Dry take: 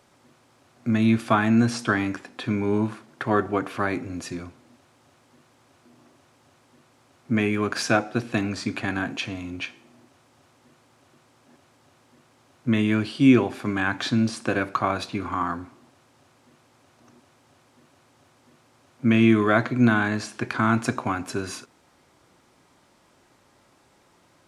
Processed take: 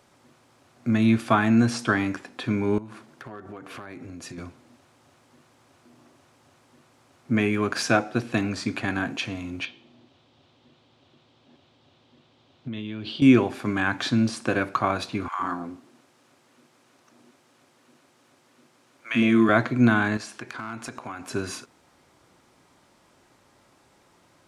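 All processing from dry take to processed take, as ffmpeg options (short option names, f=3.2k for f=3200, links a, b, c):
-filter_complex "[0:a]asettb=1/sr,asplit=3[a][b][c];[a]atrim=end=2.784[d];[b]atrim=start=2.78:end=4.38,asetpts=PTS-STARTPTS,afade=t=in:d=0.004:c=qsin,afade=t=out:st=1.596:d=0.004:c=qsin,acompressor=threshold=-35dB:ratio=16:attack=3.2:release=140:knee=1:detection=peak,asoftclip=type=hard:threshold=-31.5dB[e];[c]atrim=start=4.376[f];[d][e]acrossfade=d=0.004:c1=hsin:c2=qsin[g];[g][f]acrossfade=d=0.004:c1=qsin:c2=hsin,asettb=1/sr,asplit=3[h][i][j];[h]atrim=end=9.654[k];[i]atrim=start=9.65:end=13.22,asetpts=PTS-STARTPTS,afade=t=in:d=0.004:c=qsin,afade=t=out:st=3.566:d=0.004:c=qsin,equalizer=f=1.7k:t=o:w=2:g=-8,acompressor=threshold=-29dB:ratio=16:attack=3.2:release=140:knee=1:detection=peak,lowpass=f=3.5k:t=q:w=3[l];[j]atrim=start=13.216[m];[k][l]acrossfade=d=0.004:c1=hsin:c2=qsin[n];[n][m]acrossfade=d=0.004:c1=qsin:c2=hsin,asettb=1/sr,asplit=3[o][p][q];[o]atrim=end=15.284[r];[p]atrim=start=15.28:end=19.49,asetpts=PTS-STARTPTS,afade=t=in:d=0.004:c=qsin,afade=t=out:st=4.206:d=0.004:c=qsin,highpass=180,acrossover=split=790[s][t];[s]adelay=110[u];[u][t]amix=inputs=2:normalize=0,atrim=end_sample=185661[v];[q]atrim=start=19.486[w];[r][v]acrossfade=d=0.004:c1=hsin:c2=qsin[x];[x][w]acrossfade=d=0.004:c1=qsin:c2=hsin,asettb=1/sr,asplit=3[y][z][aa];[y]atrim=end=20.174[ab];[z]atrim=start=20.17:end=21.31,asetpts=PTS-STARTPTS,afade=t=in:d=0.004:c=qsin,afade=t=out:st=1.136:d=0.004:c=qsin,lowshelf=f=330:g=-7.5,acompressor=threshold=-35dB:ratio=2.5:attack=3.2:release=140:knee=1:detection=peak,asoftclip=type=hard:threshold=-24.5dB[ac];[aa]atrim=start=21.306[ad];[ab][ac]acrossfade=d=0.004:c1=hsin:c2=qsin[ae];[ae][ad]acrossfade=d=0.004:c1=qsin:c2=hsin"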